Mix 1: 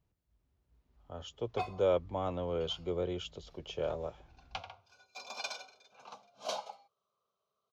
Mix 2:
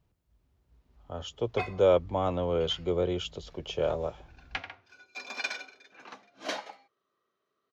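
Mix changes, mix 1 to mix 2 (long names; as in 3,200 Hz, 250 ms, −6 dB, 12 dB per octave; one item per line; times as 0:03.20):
speech +6.5 dB
background: remove phaser with its sweep stopped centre 760 Hz, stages 4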